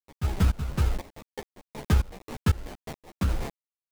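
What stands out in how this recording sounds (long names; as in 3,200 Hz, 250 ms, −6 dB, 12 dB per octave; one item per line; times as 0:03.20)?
a quantiser's noise floor 6 bits, dither none
tremolo saw up 2 Hz, depth 95%
aliases and images of a low sample rate 1,400 Hz, jitter 20%
a shimmering, thickened sound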